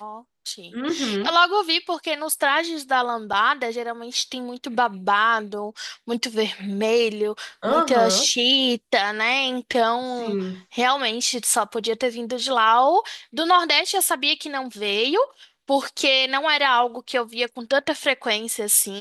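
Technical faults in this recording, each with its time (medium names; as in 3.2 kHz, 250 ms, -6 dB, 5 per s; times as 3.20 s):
3.33 s: dropout 4.7 ms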